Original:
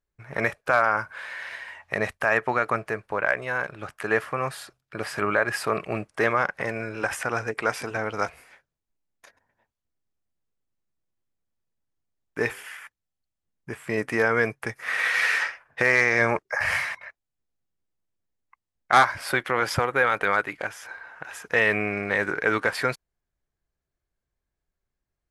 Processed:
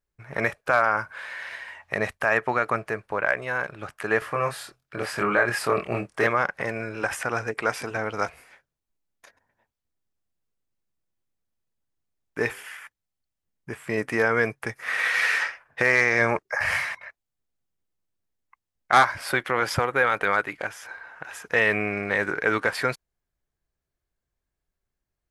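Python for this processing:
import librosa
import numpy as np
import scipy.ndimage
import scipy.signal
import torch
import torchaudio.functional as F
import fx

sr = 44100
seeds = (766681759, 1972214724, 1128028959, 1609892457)

y = fx.doubler(x, sr, ms=25.0, db=-3.5, at=(4.19, 6.27))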